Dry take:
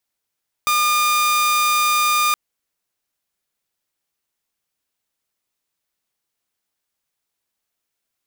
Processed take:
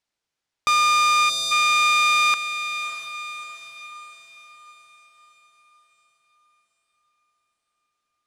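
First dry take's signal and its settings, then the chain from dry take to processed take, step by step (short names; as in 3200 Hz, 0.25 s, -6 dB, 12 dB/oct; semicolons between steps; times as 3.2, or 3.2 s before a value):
tone saw 1210 Hz -12.5 dBFS 1.67 s
LPF 6300 Hz 12 dB/oct; on a send: diffused feedback echo 0.63 s, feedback 49%, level -10 dB; on the sum: spectral gain 1.3–1.51, 720–3400 Hz -18 dB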